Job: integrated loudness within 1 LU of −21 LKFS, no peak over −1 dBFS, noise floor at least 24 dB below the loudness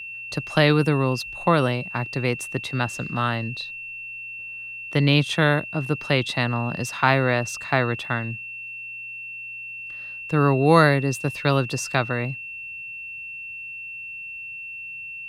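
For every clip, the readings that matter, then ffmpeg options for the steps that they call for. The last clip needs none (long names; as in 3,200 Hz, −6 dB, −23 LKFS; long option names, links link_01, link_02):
interfering tone 2,700 Hz; level of the tone −33 dBFS; integrated loudness −24.0 LKFS; sample peak −1.5 dBFS; target loudness −21.0 LKFS
→ -af "bandreject=frequency=2700:width=30"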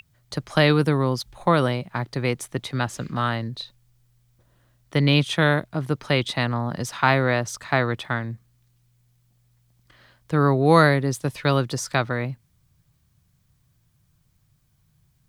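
interfering tone none found; integrated loudness −22.5 LKFS; sample peak −1.5 dBFS; target loudness −21.0 LKFS
→ -af "volume=1.5dB,alimiter=limit=-1dB:level=0:latency=1"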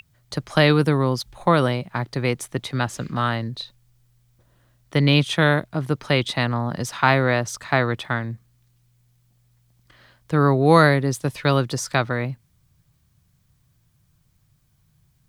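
integrated loudness −21.0 LKFS; sample peak −1.0 dBFS; background noise floor −64 dBFS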